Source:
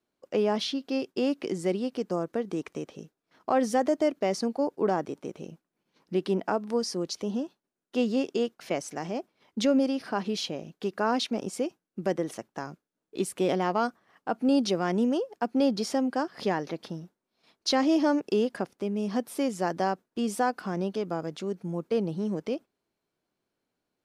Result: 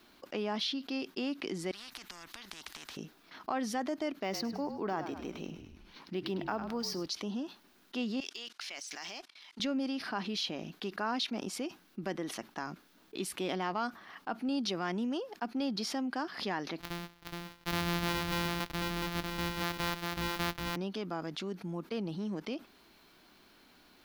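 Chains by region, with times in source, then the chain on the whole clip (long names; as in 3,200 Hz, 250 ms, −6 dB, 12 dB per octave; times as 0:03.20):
0:01.71–0:02.97: downward compressor, threshold −40 dBFS + every bin compressed towards the loudest bin 4 to 1
0:04.23–0:07.06: echo with shifted repeats 102 ms, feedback 39%, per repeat −42 Hz, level −13 dB + linearly interpolated sample-rate reduction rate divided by 2×
0:08.20–0:09.60: meter weighting curve ITU-R 468 + leveller curve on the samples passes 1 + output level in coarse steps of 24 dB
0:16.80–0:20.76: samples sorted by size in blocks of 256 samples + single-tap delay 420 ms −4.5 dB
whole clip: graphic EQ with 10 bands 125 Hz −11 dB, 500 Hz −10 dB, 4,000 Hz +4 dB, 8,000 Hz −9 dB; envelope flattener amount 50%; level −6 dB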